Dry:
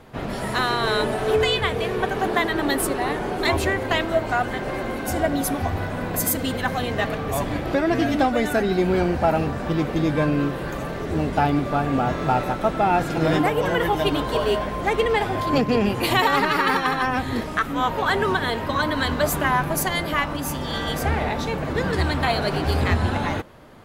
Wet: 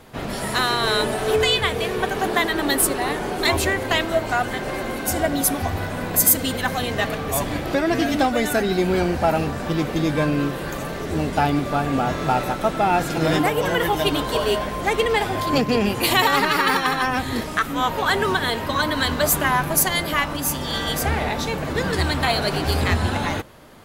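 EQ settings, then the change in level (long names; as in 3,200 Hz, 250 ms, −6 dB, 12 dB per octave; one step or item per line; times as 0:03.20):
high-shelf EQ 3,600 Hz +9 dB
mains-hum notches 60/120 Hz
0.0 dB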